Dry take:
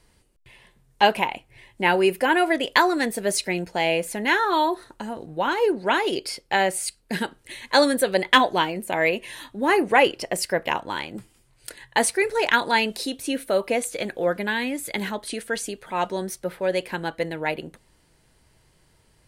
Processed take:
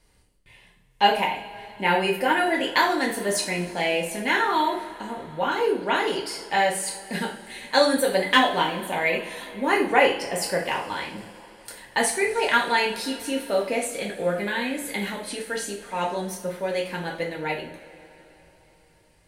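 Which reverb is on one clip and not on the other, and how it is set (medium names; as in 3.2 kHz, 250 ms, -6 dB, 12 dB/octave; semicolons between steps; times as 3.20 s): two-slope reverb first 0.43 s, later 3.9 s, from -21 dB, DRR -2 dB; trim -5 dB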